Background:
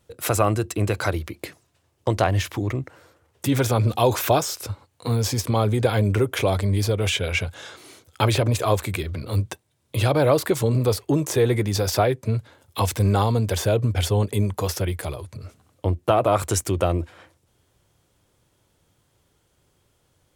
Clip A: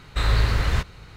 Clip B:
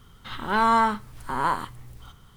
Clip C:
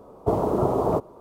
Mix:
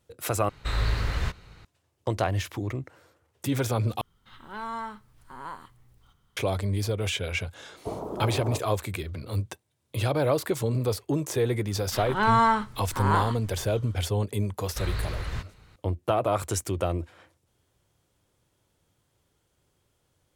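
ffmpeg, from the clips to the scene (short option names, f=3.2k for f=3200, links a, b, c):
-filter_complex "[1:a]asplit=2[a][b];[2:a]asplit=2[c][d];[0:a]volume=-6dB[e];[d]lowpass=8.8k[f];[e]asplit=3[g][h][i];[g]atrim=end=0.494[j];[a]atrim=end=1.16,asetpts=PTS-STARTPTS,volume=-6dB[k];[h]atrim=start=1.646:end=4.014[l];[c]atrim=end=2.36,asetpts=PTS-STARTPTS,volume=-15dB[m];[i]atrim=start=6.366[n];[3:a]atrim=end=1.2,asetpts=PTS-STARTPTS,volume=-11.5dB,afade=t=in:d=0.004:c=hsin,afade=t=out:st=1.196:d=0.004:c=hsin,adelay=7590[o];[f]atrim=end=2.36,asetpts=PTS-STARTPTS,volume=-1dB,afade=t=in:d=0.004:c=hsin,afade=t=out:st=2.356:d=0.004:c=hsin,adelay=11670[p];[b]atrim=end=1.16,asetpts=PTS-STARTPTS,volume=-11dB,afade=t=in:d=0.004:c=hsin,afade=t=out:st=1.156:d=0.004:c=hsin,adelay=643860S[q];[j][k]acrossfade=d=0.004:c1=hsin:c2=hsin[r];[r][l]acrossfade=d=0.004:c1=hsin:c2=hsin[s];[s][m]acrossfade=d=0.004:c1=hsin:c2=hsin[t];[t][n]acrossfade=d=0.004:c1=hsin:c2=hsin[u];[u][o][p][q]amix=inputs=4:normalize=0"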